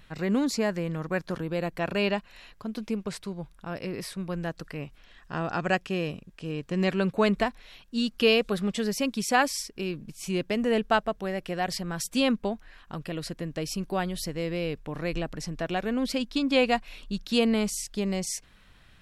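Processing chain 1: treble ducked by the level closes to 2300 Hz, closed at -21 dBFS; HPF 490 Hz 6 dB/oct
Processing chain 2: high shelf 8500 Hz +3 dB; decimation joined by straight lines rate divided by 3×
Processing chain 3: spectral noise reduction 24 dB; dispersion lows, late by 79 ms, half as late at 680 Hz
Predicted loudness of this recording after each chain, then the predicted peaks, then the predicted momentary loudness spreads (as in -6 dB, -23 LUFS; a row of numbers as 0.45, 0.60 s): -32.5, -29.0, -30.5 LUFS; -10.0, -9.0, -10.0 dBFS; 14, 12, 18 LU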